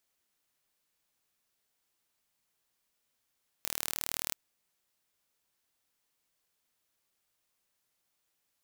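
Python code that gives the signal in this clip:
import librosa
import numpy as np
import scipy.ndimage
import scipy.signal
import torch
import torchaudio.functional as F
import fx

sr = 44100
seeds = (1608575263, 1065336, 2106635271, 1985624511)

y = 10.0 ** (-6.0 / 20.0) * (np.mod(np.arange(round(0.68 * sr)), round(sr / 38.6)) == 0)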